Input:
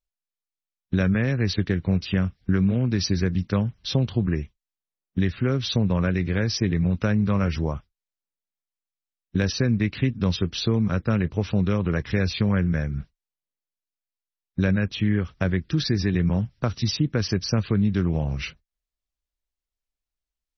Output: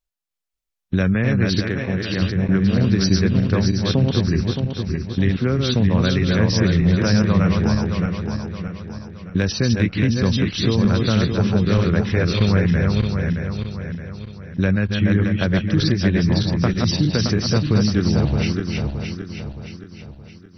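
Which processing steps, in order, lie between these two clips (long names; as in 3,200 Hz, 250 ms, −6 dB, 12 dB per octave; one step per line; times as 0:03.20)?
feedback delay that plays each chunk backwards 310 ms, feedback 66%, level −3 dB
0:01.60–0:02.22: low-shelf EQ 220 Hz −9 dB
level +3 dB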